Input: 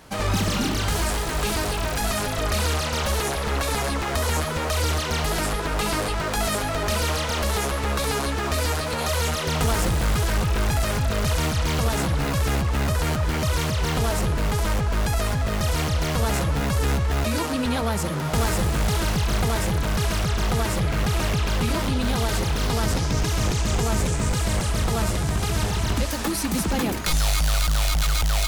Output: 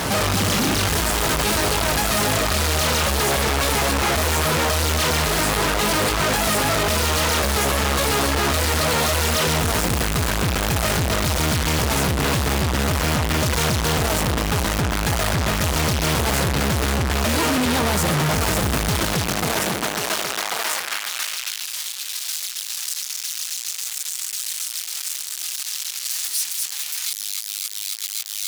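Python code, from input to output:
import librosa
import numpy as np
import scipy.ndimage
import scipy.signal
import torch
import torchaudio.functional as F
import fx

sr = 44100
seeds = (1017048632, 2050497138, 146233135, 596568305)

y = fx.fuzz(x, sr, gain_db=50.0, gate_db=-54.0)
y = fx.filter_sweep_highpass(y, sr, from_hz=62.0, to_hz=4000.0, start_s=18.86, end_s=21.76, q=0.71)
y = y * 10.0 ** (-5.5 / 20.0)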